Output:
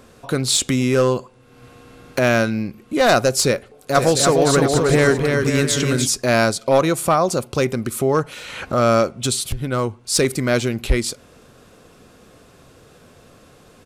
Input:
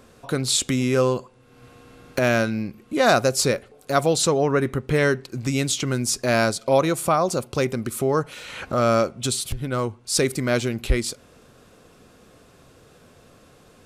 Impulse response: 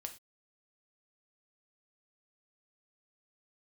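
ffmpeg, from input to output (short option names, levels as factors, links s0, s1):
-filter_complex "[0:a]aeval=exprs='clip(val(0),-1,0.2)':c=same,asplit=3[s0][s1][s2];[s0]afade=t=out:st=3.94:d=0.02[s3];[s1]aecho=1:1:300|525|693.8|820.3|915.2:0.631|0.398|0.251|0.158|0.1,afade=t=in:st=3.94:d=0.02,afade=t=out:st=6.06:d=0.02[s4];[s2]afade=t=in:st=6.06:d=0.02[s5];[s3][s4][s5]amix=inputs=3:normalize=0,volume=1.5"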